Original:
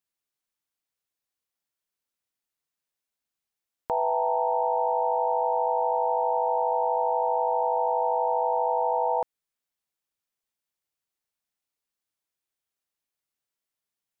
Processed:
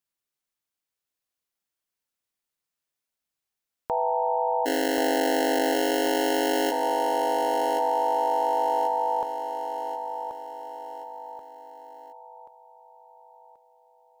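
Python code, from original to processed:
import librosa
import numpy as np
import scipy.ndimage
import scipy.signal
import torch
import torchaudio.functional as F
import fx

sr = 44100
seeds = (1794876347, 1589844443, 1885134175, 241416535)

y = fx.sample_hold(x, sr, seeds[0], rate_hz=1200.0, jitter_pct=0, at=(4.65, 6.7), fade=0.02)
y = fx.echo_feedback(y, sr, ms=1082, feedback_pct=45, wet_db=-7.5)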